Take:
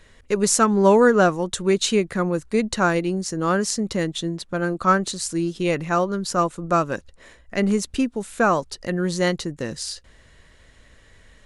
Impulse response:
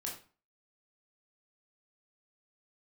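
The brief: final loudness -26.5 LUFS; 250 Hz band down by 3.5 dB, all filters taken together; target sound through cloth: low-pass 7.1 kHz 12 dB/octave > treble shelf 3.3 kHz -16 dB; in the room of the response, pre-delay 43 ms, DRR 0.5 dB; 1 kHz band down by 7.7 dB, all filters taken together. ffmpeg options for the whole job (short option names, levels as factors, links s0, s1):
-filter_complex "[0:a]equalizer=f=250:t=o:g=-4.5,equalizer=f=1000:t=o:g=-8.5,asplit=2[s0][s1];[1:a]atrim=start_sample=2205,adelay=43[s2];[s1][s2]afir=irnorm=-1:irlink=0,volume=1[s3];[s0][s3]amix=inputs=2:normalize=0,lowpass=7100,highshelf=f=3300:g=-16,volume=0.668"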